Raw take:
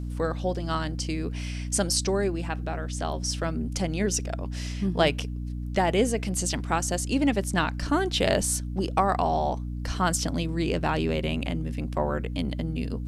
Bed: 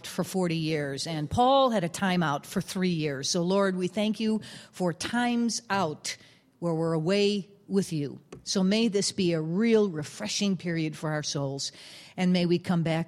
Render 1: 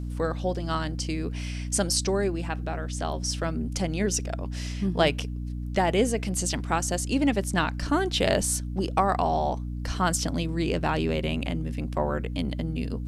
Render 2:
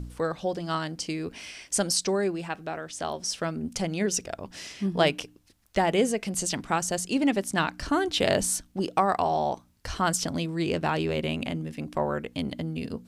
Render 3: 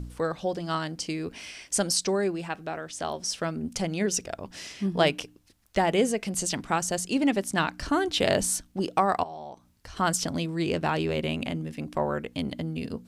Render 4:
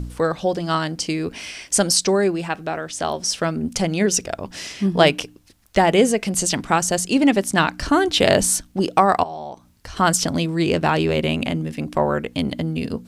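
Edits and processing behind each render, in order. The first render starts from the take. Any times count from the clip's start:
no processing that can be heard
hum removal 60 Hz, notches 5
0:09.23–0:09.97: downward compressor 2 to 1, threshold −48 dBFS
level +8 dB

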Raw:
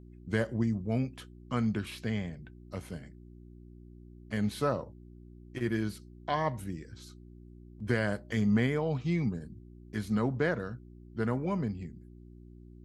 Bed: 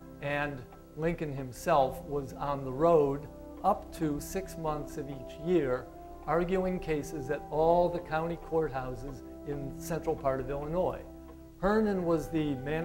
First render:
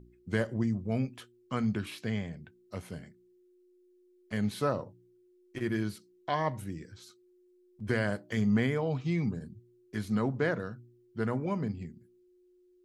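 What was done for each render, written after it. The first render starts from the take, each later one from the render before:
hum removal 60 Hz, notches 5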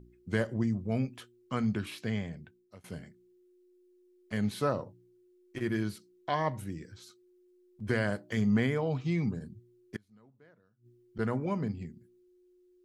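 0:02.39–0:02.84: fade out, to −24 dB
0:09.96–0:11.19: gate with flip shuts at −34 dBFS, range −31 dB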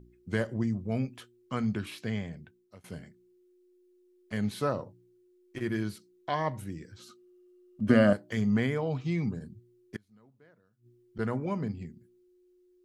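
0:06.99–0:08.13: hollow resonant body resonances 240/580/1,200/2,800 Hz, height 14 dB, ringing for 30 ms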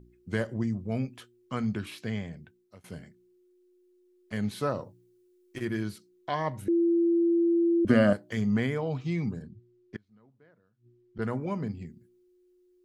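0:04.75–0:05.65: high-shelf EQ 4,100 Hz +6 dB
0:06.68–0:07.85: beep over 339 Hz −20.5 dBFS
0:09.42–0:11.22: high-frequency loss of the air 130 metres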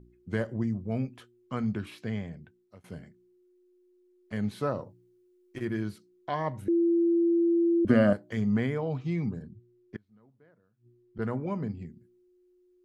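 high-shelf EQ 2,500 Hz −7.5 dB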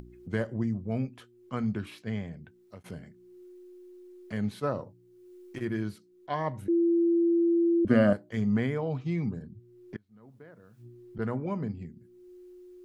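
upward compression, threshold −38 dBFS
level that may rise only so fast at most 530 dB per second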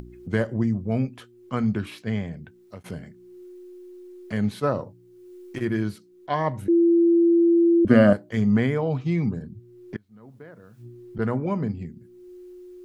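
level +6.5 dB

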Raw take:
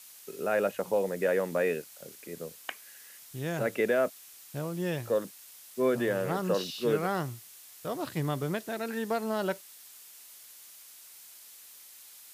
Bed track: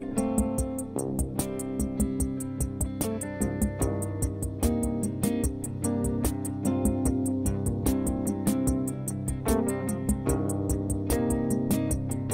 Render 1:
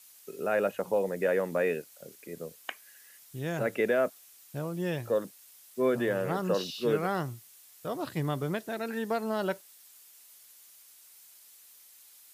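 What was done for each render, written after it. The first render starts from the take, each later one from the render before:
broadband denoise 6 dB, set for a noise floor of −52 dBFS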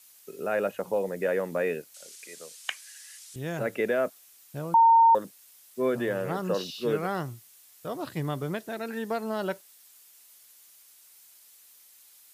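0:01.94–0:03.36: meter weighting curve ITU-R 468
0:04.74–0:05.15: beep over 915 Hz −14 dBFS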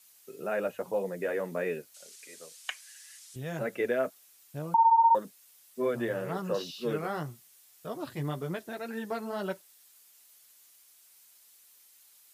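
flanger 1.9 Hz, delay 4.3 ms, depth 4.4 ms, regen −25%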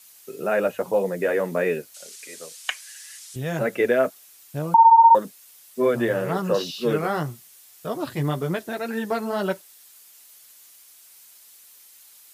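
level +9 dB

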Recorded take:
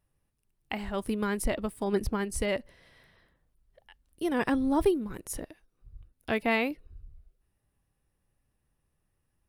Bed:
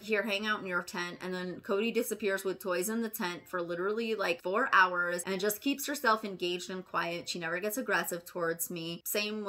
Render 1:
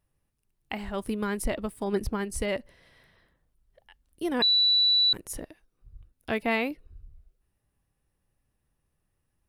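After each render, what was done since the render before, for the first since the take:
0:04.42–0:05.13: beep over 3,950 Hz −18.5 dBFS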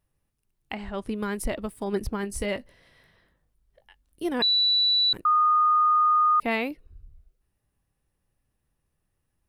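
0:00.74–0:01.15: high-frequency loss of the air 62 metres
0:02.21–0:04.29: double-tracking delay 20 ms −10.5 dB
0:05.25–0:06.40: beep over 1,230 Hz −17 dBFS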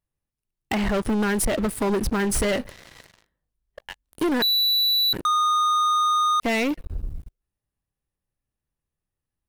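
downward compressor 20 to 1, threshold −30 dBFS, peak gain reduction 11.5 dB
leveller curve on the samples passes 5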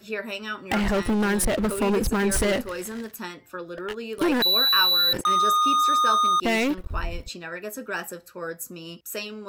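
mix in bed −0.5 dB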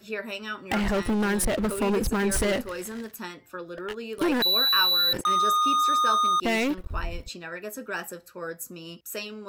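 level −2 dB

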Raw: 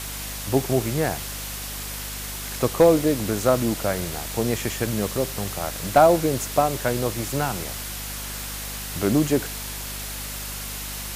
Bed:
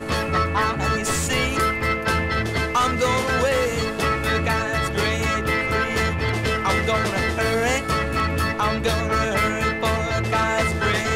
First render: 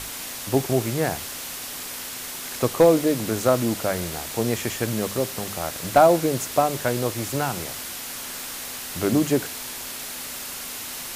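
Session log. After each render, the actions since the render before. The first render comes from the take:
mains-hum notches 50/100/150/200 Hz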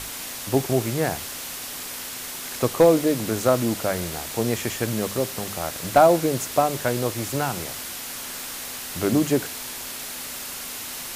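no processing that can be heard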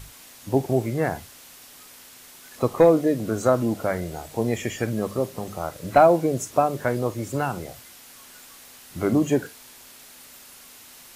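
noise reduction from a noise print 13 dB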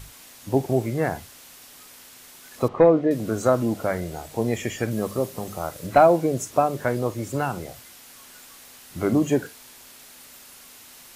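0:02.68–0:03.11: low-pass filter 2,500 Hz
0:04.91–0:05.87: high-shelf EQ 7,000 Hz +5 dB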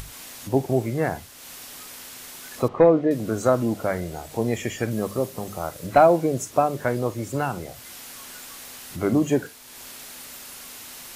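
upward compression, threshold −32 dBFS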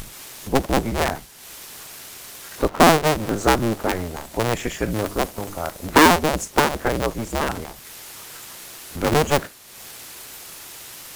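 sub-harmonics by changed cycles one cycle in 2, inverted
in parallel at −11.5 dB: bit reduction 6 bits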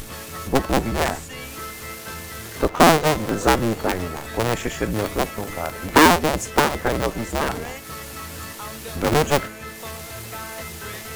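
mix in bed −14 dB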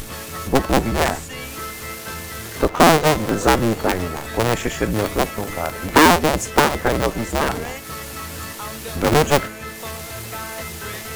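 level +3 dB
brickwall limiter −3 dBFS, peak gain reduction 2.5 dB

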